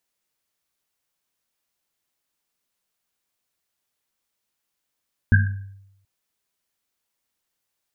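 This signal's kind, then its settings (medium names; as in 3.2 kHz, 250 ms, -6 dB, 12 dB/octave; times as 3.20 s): Risset drum length 0.73 s, pitch 98 Hz, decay 0.85 s, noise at 1.6 kHz, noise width 130 Hz, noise 25%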